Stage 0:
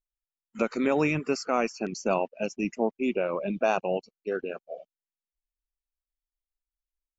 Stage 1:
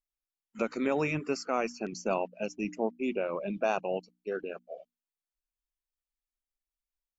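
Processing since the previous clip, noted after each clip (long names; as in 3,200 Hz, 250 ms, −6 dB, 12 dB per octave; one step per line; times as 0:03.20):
mains-hum notches 60/120/180/240/300 Hz
level −4 dB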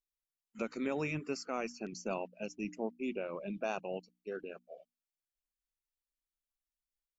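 parametric band 840 Hz −4.5 dB 2.4 octaves
level −4 dB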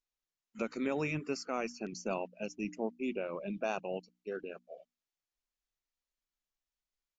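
downsampling to 16,000 Hz
level +1.5 dB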